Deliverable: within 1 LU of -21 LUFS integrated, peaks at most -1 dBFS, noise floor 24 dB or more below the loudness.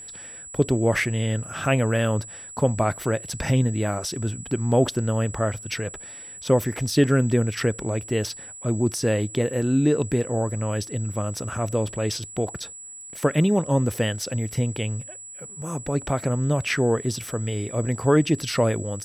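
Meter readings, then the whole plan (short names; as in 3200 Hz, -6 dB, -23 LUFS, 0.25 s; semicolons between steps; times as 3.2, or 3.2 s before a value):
steady tone 7800 Hz; tone level -38 dBFS; loudness -24.5 LUFS; peak -7.0 dBFS; loudness target -21.0 LUFS
-> notch 7800 Hz, Q 30; gain +3.5 dB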